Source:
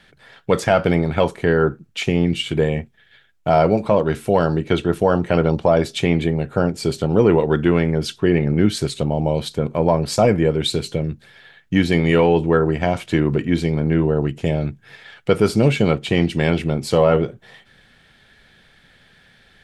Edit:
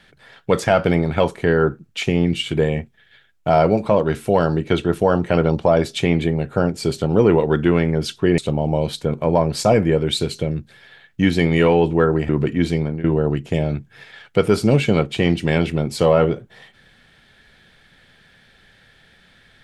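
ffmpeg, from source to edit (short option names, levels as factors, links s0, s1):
-filter_complex "[0:a]asplit=4[s0][s1][s2][s3];[s0]atrim=end=8.382[s4];[s1]atrim=start=8.908:end=12.822[s5];[s2]atrim=start=13.208:end=13.96,asetpts=PTS-STARTPTS,afade=t=out:st=0.502:d=0.25:silence=0.158489[s6];[s3]atrim=start=13.96,asetpts=PTS-STARTPTS,afade=t=in:d=0.004:c=hsin:silence=0.158489[s7];[s4][s5]acrossfade=d=0.004:c1=hsin:c2=hsin[s8];[s6][s7]concat=n=2:v=0:a=1[s9];[s8][s9]acrossfade=d=0.004:c1=hsin:c2=hsin"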